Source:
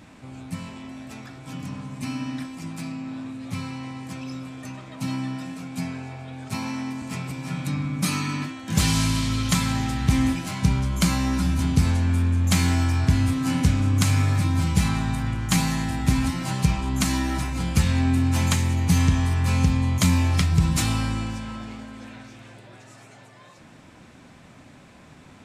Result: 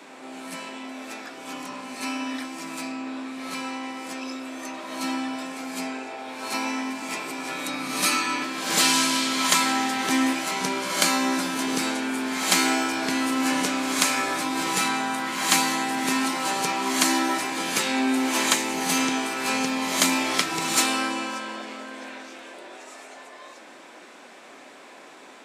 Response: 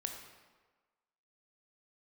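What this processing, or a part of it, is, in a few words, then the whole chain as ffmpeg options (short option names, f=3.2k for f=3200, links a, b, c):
ghost voice: -filter_complex "[0:a]areverse[a];[1:a]atrim=start_sample=2205[b];[a][b]afir=irnorm=-1:irlink=0,areverse,highpass=f=330:w=0.5412,highpass=f=330:w=1.3066,volume=7dB"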